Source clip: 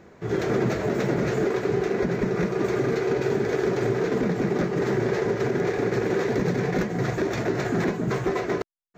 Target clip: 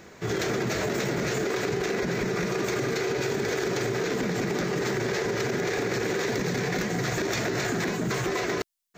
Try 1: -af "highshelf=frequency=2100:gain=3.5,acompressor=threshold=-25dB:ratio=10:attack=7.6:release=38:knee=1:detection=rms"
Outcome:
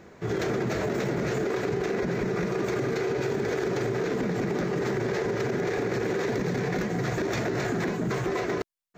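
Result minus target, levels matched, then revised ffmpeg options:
4,000 Hz band −6.0 dB
-af "highshelf=frequency=2100:gain=14,acompressor=threshold=-25dB:ratio=10:attack=7.6:release=38:knee=1:detection=rms"

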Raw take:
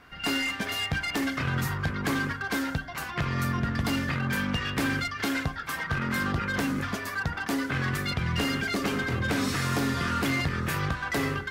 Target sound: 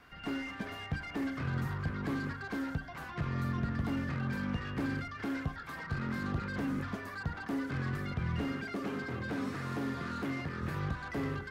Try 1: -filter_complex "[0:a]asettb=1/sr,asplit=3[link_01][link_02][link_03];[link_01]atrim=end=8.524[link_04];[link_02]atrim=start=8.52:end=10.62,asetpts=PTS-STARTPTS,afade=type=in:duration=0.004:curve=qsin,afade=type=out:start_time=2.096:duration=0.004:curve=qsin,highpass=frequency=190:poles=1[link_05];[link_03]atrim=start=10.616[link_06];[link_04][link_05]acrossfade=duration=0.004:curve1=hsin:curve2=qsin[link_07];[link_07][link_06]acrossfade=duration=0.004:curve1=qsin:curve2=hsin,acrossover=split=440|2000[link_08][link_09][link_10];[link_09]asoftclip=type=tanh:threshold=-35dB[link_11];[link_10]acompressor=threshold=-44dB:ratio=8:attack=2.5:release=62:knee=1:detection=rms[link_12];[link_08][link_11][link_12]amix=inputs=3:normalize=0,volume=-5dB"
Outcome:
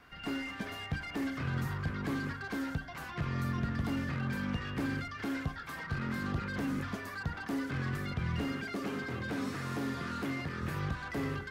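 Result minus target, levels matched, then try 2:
downward compressor: peak gain reduction −5.5 dB
-filter_complex "[0:a]asettb=1/sr,asplit=3[link_01][link_02][link_03];[link_01]atrim=end=8.524[link_04];[link_02]atrim=start=8.52:end=10.62,asetpts=PTS-STARTPTS,afade=type=in:duration=0.004:curve=qsin,afade=type=out:start_time=2.096:duration=0.004:curve=qsin,highpass=frequency=190:poles=1[link_05];[link_03]atrim=start=10.616[link_06];[link_04][link_05]acrossfade=duration=0.004:curve1=hsin:curve2=qsin[link_07];[link_07][link_06]acrossfade=duration=0.004:curve1=qsin:curve2=hsin,acrossover=split=440|2000[link_08][link_09][link_10];[link_09]asoftclip=type=tanh:threshold=-35dB[link_11];[link_10]acompressor=threshold=-50.5dB:ratio=8:attack=2.5:release=62:knee=1:detection=rms[link_12];[link_08][link_11][link_12]amix=inputs=3:normalize=0,volume=-5dB"

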